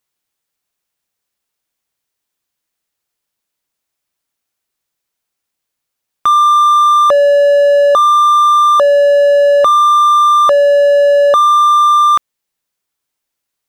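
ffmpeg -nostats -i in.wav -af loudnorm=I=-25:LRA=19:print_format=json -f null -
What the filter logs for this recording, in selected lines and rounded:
"input_i" : "-8.4",
"input_tp" : "-3.3",
"input_lra" : "3.3",
"input_thresh" : "-18.4",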